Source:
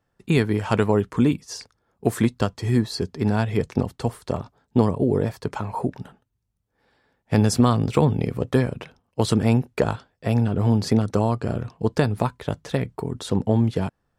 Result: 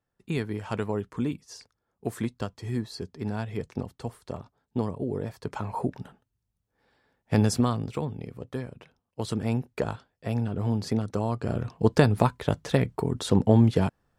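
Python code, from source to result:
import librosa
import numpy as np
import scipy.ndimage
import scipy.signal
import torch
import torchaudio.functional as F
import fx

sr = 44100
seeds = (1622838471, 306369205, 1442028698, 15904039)

y = fx.gain(x, sr, db=fx.line((5.22, -10.0), (5.65, -3.5), (7.44, -3.5), (8.1, -14.0), (8.73, -14.0), (9.65, -7.5), (11.21, -7.5), (11.78, 1.0)))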